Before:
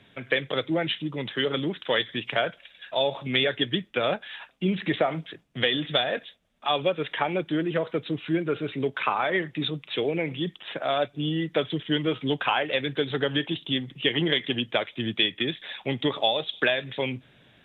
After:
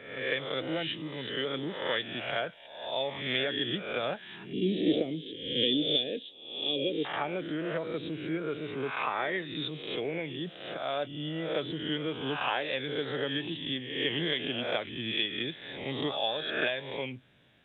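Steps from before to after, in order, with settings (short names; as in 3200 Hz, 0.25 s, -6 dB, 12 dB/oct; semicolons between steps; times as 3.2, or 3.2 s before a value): spectral swells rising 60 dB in 0.83 s; 4.53–7.05 EQ curve 170 Hz 0 dB, 270 Hz +10 dB, 460 Hz +5 dB, 740 Hz -16 dB, 1300 Hz -26 dB, 3200 Hz +6 dB, 6300 Hz -2 dB; gain -9 dB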